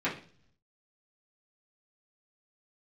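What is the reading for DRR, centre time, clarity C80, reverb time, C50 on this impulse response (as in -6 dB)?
-9.5 dB, 23 ms, 15.0 dB, 0.45 s, 9.5 dB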